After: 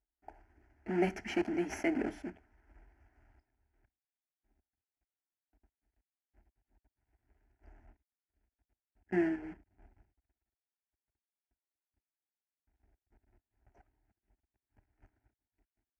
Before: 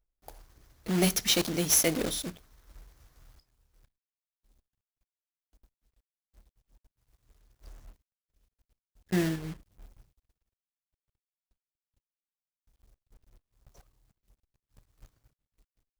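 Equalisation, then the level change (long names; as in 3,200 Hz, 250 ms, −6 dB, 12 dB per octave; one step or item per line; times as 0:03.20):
high-pass filter 67 Hz 12 dB per octave
low-pass filter 2,000 Hz 12 dB per octave
phaser with its sweep stopped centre 760 Hz, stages 8
0.0 dB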